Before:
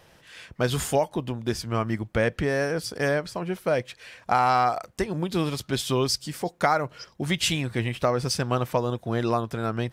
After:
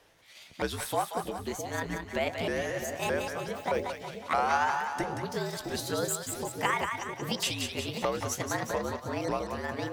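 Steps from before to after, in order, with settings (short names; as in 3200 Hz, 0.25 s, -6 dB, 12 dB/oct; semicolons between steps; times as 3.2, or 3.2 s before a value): repeated pitch sweeps +8.5 st, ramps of 0.619 s; bell 85 Hz -15 dB 1.4 oct; frequency shift -63 Hz; split-band echo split 630 Hz, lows 0.66 s, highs 0.183 s, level -5 dB; gain -5.5 dB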